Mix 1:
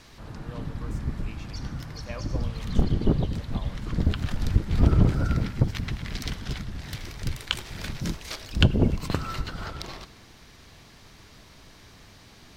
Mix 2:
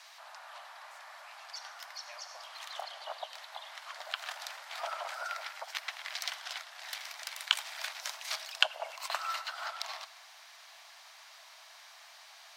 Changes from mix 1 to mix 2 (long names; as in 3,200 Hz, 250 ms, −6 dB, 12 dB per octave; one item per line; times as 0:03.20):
speech −8.5 dB
master: add Butterworth high-pass 630 Hz 72 dB per octave